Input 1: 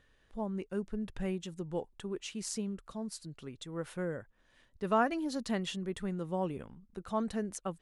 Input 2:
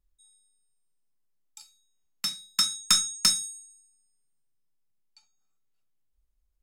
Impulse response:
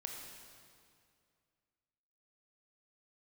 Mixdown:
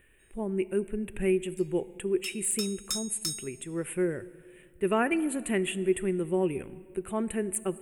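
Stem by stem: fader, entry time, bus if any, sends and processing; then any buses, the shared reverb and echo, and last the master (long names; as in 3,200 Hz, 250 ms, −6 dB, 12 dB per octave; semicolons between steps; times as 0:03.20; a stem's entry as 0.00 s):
+2.5 dB, 0.00 s, send −10.5 dB, parametric band 370 Hz +13.5 dB 0.36 octaves; de-essing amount 70%; drawn EQ curve 120 Hz 0 dB, 1,200 Hz −6 dB, 2,500 Hz +10 dB, 5,400 Hz −29 dB, 8,300 Hz +13 dB
−17.0 dB, 0.00 s, send −18.5 dB, high-shelf EQ 6,500 Hz +11.5 dB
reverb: on, RT60 2.3 s, pre-delay 20 ms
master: no processing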